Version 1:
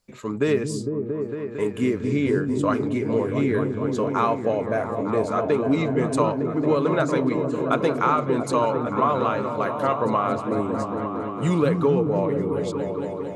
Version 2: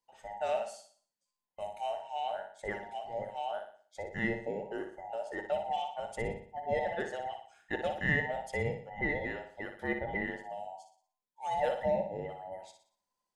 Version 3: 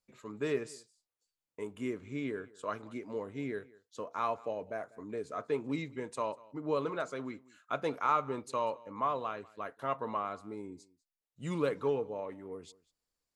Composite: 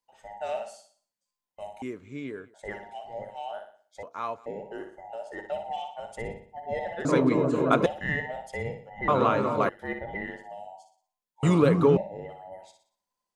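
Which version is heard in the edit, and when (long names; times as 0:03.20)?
2
0:01.82–0:02.54: punch in from 3
0:04.03–0:04.46: punch in from 3
0:07.05–0:07.86: punch in from 1
0:09.08–0:09.69: punch in from 1
0:11.43–0:11.97: punch in from 1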